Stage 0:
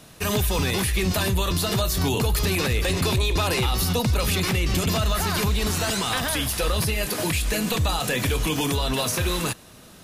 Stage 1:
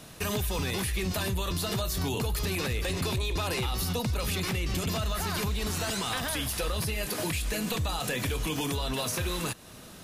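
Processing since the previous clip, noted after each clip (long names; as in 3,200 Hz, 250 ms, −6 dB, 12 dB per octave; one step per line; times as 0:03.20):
downward compressor 2 to 1, threshold −33 dBFS, peak gain reduction 8.5 dB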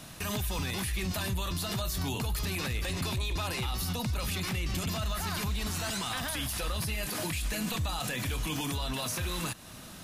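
parametric band 440 Hz −7.5 dB 0.58 octaves
brickwall limiter −26 dBFS, peak gain reduction 6 dB
level +1.5 dB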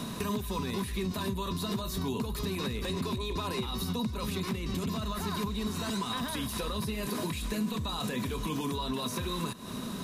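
hollow resonant body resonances 230/400/1,000/3,800 Hz, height 15 dB, ringing for 35 ms
downward compressor 3 to 1, threshold −38 dBFS, peak gain reduction 15.5 dB
level +4 dB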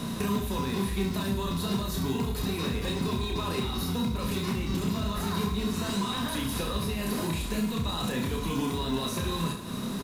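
in parallel at −9.5 dB: decimation without filtering 38×
on the sum: reverse bouncing-ball delay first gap 30 ms, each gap 1.2×, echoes 5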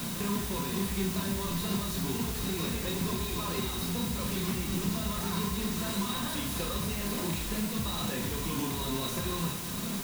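bit-depth reduction 6 bits, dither triangular
convolution reverb RT60 1.1 s, pre-delay 6 ms, DRR 9.5 dB
level −4 dB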